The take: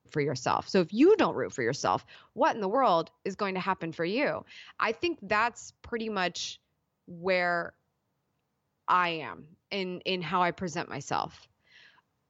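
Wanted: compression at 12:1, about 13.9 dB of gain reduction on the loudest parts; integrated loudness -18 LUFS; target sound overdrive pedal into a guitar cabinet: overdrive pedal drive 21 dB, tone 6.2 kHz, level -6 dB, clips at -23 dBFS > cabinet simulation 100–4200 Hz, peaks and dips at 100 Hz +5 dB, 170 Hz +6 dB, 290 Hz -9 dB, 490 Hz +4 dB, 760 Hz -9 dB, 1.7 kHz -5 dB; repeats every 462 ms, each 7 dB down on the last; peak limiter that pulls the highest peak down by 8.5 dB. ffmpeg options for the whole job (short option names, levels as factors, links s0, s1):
-filter_complex "[0:a]acompressor=threshold=0.0282:ratio=12,alimiter=level_in=1.33:limit=0.0631:level=0:latency=1,volume=0.75,aecho=1:1:462|924|1386|1848|2310:0.447|0.201|0.0905|0.0407|0.0183,asplit=2[s0][s1];[s1]highpass=f=720:p=1,volume=11.2,asoftclip=type=tanh:threshold=0.0708[s2];[s0][s2]amix=inputs=2:normalize=0,lowpass=f=6200:p=1,volume=0.501,highpass=100,equalizer=f=100:t=q:w=4:g=5,equalizer=f=170:t=q:w=4:g=6,equalizer=f=290:t=q:w=4:g=-9,equalizer=f=490:t=q:w=4:g=4,equalizer=f=760:t=q:w=4:g=-9,equalizer=f=1700:t=q:w=4:g=-5,lowpass=f=4200:w=0.5412,lowpass=f=4200:w=1.3066,volume=5.96"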